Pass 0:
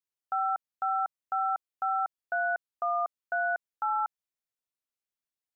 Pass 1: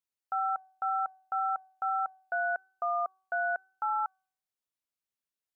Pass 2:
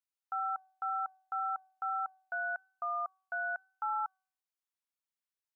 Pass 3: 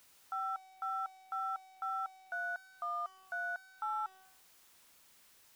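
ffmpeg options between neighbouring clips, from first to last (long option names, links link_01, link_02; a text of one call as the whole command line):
ffmpeg -i in.wav -af "bandreject=frequency=378.4:width_type=h:width=4,bandreject=frequency=756.8:width_type=h:width=4,bandreject=frequency=1135.2:width_type=h:width=4,bandreject=frequency=1513.6:width_type=h:width=4,volume=-1.5dB" out.wav
ffmpeg -i in.wav -af "lowshelf=frequency=670:width_type=q:width=1.5:gain=-9.5,volume=-5dB" out.wav
ffmpeg -i in.wav -af "aeval=exprs='val(0)+0.5*0.00282*sgn(val(0))':channel_layout=same,volume=-3.5dB" out.wav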